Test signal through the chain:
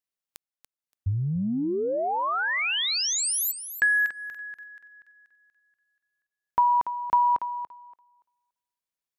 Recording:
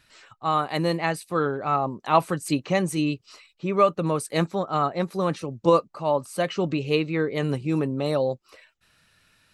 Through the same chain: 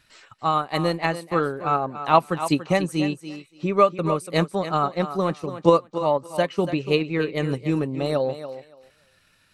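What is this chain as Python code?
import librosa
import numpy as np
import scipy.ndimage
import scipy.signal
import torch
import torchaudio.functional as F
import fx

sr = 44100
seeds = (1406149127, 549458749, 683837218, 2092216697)

y = fx.transient(x, sr, attack_db=4, sustain_db=-6)
y = fx.echo_thinned(y, sr, ms=286, feedback_pct=17, hz=190.0, wet_db=-11)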